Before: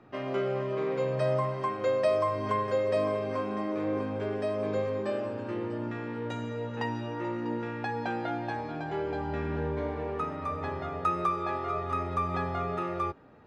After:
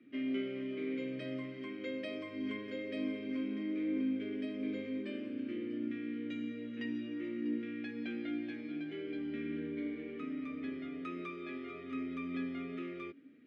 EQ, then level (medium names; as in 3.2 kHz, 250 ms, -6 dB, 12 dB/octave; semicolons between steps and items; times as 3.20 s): vowel filter i; high-pass 160 Hz 6 dB/octave; +7.5 dB